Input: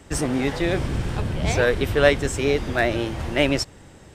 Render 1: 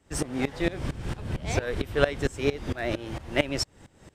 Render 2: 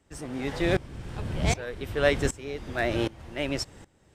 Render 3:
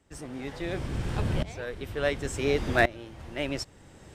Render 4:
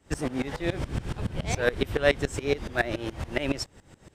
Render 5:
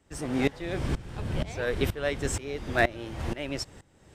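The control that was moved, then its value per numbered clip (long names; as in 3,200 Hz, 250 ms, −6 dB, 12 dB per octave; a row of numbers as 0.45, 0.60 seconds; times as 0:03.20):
tremolo with a ramp in dB, speed: 4.4, 1.3, 0.7, 7.1, 2.1 Hertz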